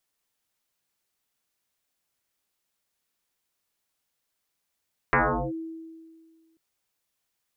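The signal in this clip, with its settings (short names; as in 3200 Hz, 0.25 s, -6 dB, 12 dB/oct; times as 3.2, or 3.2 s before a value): FM tone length 1.44 s, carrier 325 Hz, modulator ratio 0.58, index 9.6, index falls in 0.39 s linear, decay 1.84 s, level -16.5 dB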